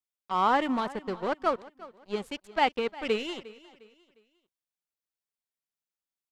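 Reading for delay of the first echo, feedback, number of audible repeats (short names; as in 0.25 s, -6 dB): 0.355 s, 36%, 2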